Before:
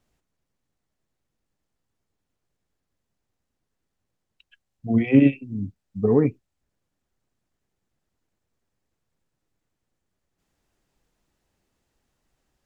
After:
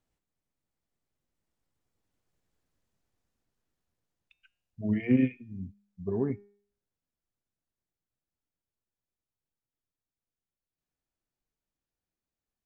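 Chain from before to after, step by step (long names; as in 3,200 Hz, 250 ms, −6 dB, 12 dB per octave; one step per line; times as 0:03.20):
source passing by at 0:02.63, 29 m/s, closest 28 metres
hum removal 203 Hz, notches 27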